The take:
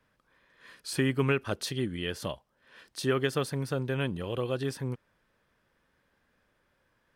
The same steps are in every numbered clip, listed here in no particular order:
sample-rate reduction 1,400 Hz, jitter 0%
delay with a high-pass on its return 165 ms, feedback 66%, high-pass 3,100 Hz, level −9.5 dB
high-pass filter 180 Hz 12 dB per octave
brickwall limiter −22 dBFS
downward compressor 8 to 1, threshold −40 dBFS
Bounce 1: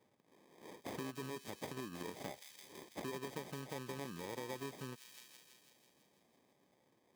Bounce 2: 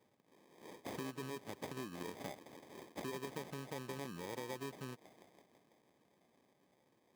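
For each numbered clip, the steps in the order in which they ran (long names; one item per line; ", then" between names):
sample-rate reduction, then delay with a high-pass on its return, then brickwall limiter, then downward compressor, then high-pass filter
delay with a high-pass on its return, then sample-rate reduction, then brickwall limiter, then downward compressor, then high-pass filter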